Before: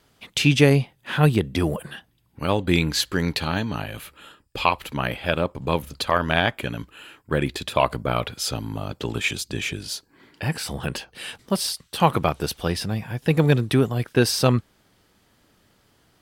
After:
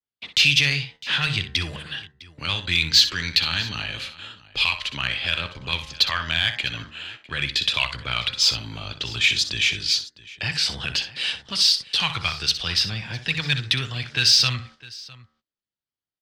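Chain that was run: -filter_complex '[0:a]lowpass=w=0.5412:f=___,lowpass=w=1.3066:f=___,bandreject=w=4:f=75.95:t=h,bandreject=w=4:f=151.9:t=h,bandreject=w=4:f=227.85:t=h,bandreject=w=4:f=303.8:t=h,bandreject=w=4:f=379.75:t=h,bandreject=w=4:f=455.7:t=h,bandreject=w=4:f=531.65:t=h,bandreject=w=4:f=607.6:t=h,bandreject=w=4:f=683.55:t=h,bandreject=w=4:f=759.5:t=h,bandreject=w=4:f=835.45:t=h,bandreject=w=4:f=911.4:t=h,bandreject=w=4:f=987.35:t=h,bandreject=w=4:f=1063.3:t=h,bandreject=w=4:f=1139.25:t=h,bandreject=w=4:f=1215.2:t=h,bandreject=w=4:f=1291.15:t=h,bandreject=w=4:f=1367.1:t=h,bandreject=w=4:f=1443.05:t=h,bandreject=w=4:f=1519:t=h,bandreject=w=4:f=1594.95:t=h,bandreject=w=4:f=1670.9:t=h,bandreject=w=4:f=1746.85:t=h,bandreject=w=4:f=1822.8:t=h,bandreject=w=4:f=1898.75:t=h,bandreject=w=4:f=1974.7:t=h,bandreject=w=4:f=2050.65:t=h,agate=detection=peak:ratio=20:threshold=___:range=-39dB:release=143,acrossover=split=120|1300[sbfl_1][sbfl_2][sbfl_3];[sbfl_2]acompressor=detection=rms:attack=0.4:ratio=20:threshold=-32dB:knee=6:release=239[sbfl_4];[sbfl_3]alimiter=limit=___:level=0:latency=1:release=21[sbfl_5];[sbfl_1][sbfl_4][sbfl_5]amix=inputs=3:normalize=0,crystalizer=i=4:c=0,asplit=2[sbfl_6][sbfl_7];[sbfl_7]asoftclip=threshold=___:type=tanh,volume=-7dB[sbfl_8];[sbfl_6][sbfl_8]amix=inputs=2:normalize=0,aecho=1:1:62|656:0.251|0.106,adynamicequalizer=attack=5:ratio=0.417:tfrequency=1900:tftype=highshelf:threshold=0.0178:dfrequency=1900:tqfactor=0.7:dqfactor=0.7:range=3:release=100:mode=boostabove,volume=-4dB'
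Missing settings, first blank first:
4800, 4800, -50dB, -16dB, -19dB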